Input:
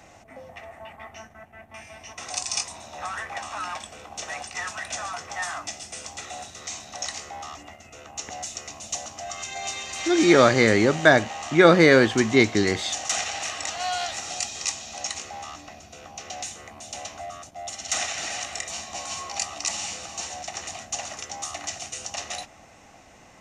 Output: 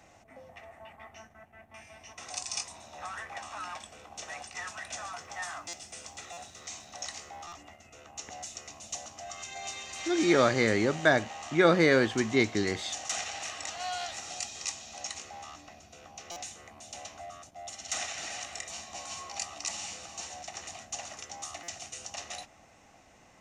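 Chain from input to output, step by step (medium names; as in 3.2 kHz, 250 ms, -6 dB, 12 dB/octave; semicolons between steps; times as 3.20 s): 4.91–7.46 s: added noise white -75 dBFS; buffer glitch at 5.68/6.32/7.47/16.31/21.63 s, samples 256, times 8; trim -7.5 dB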